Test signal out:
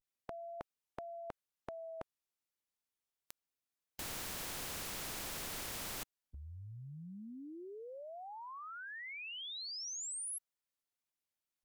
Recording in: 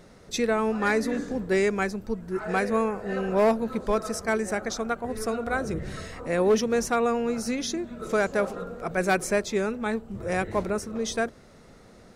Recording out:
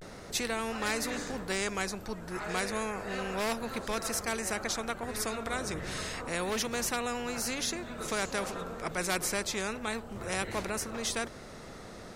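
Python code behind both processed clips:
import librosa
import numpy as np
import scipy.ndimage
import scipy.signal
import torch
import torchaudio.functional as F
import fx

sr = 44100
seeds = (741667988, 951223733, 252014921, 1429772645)

y = fx.vibrato(x, sr, rate_hz=0.31, depth_cents=48.0)
y = fx.spectral_comp(y, sr, ratio=2.0)
y = F.gain(torch.from_numpy(y), -2.0).numpy()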